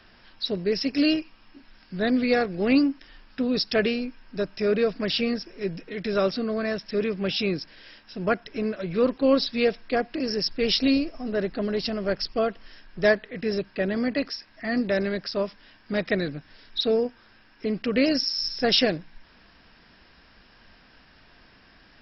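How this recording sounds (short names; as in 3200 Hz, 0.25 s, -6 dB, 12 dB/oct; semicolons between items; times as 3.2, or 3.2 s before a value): noise floor -56 dBFS; spectral tilt -3.0 dB/oct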